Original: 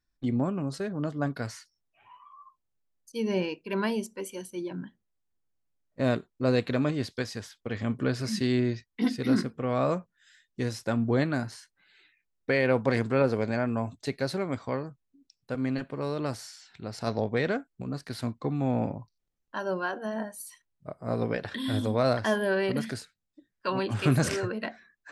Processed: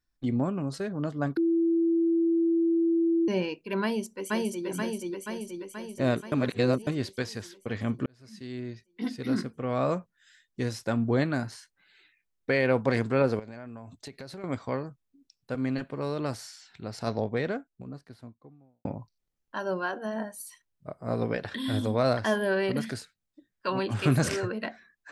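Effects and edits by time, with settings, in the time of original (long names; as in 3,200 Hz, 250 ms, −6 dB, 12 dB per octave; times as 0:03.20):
0:01.37–0:03.28: beep over 333 Hz −21 dBFS
0:03.82–0:04.66: delay throw 480 ms, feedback 65%, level 0 dB
0:06.32–0:06.87: reverse
0:08.06–0:09.99: fade in
0:13.39–0:14.44: downward compressor, threshold −39 dBFS
0:16.85–0:18.85: fade out and dull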